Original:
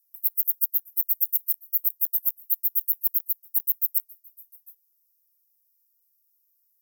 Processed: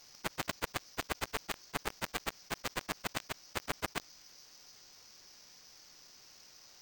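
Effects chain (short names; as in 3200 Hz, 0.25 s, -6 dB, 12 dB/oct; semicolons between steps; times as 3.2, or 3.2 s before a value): soft clip -6.5 dBFS, distortion -20 dB; careless resampling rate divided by 4×, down filtered, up hold; fast leveller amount 50%; gain +13 dB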